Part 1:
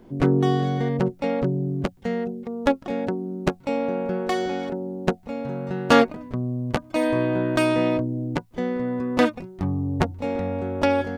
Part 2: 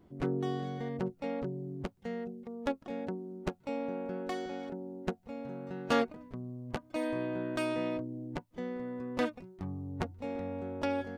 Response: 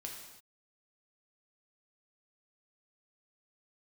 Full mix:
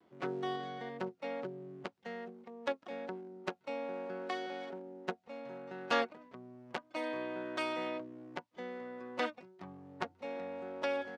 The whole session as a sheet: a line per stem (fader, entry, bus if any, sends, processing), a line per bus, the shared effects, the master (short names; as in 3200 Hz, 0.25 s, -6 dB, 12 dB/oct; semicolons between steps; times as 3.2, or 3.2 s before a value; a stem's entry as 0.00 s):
-17.5 dB, 0.00 s, no send, crossover distortion -37 dBFS; level quantiser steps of 11 dB
0.0 dB, 5.4 ms, no send, LPF 5700 Hz 12 dB/oct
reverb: off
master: weighting filter A